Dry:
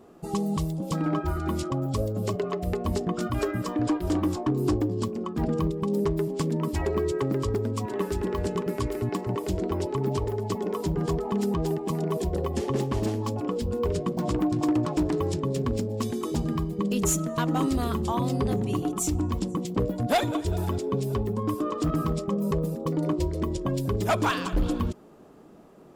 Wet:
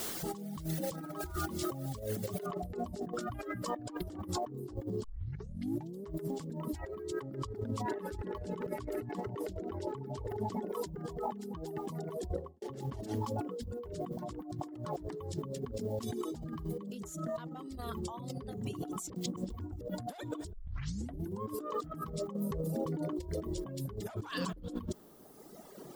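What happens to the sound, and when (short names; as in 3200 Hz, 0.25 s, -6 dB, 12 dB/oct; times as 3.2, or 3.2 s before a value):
2.46 noise floor step -44 dB -62 dB
5.04 tape start 1.00 s
7.22–10.67 high shelf 7800 Hz -8.5 dB
12.11–12.62 studio fade out
19.1–19.81 reverse
20.53 tape start 0.89 s
22.33–23.23 compressor 5:1, threshold -28 dBFS
whole clip: reverb removal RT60 1.7 s; bell 2500 Hz -6.5 dB 0.27 oct; negative-ratio compressor -38 dBFS, ratio -1; gain -2 dB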